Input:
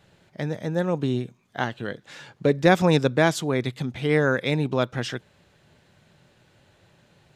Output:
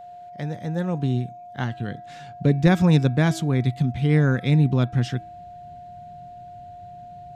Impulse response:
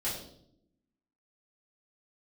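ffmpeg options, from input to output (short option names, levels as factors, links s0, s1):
-af "bandreject=f=326.5:t=h:w=4,bandreject=f=653:t=h:w=4,bandreject=f=979.5:t=h:w=4,bandreject=f=1306:t=h:w=4,bandreject=f=1632.5:t=h:w=4,bandreject=f=1959:t=h:w=4,bandreject=f=2285.5:t=h:w=4,bandreject=f=2612:t=h:w=4,asubboost=boost=8:cutoff=220,aeval=exprs='val(0)+0.0178*sin(2*PI*710*n/s)':c=same,volume=0.668"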